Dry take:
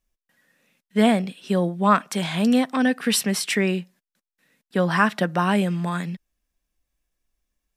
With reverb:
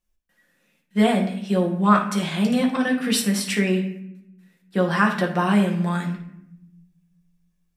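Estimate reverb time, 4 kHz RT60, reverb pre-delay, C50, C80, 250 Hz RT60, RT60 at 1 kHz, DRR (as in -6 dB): 0.80 s, 0.45 s, 6 ms, 7.5 dB, 11.5 dB, 1.4 s, 0.70 s, 0.0 dB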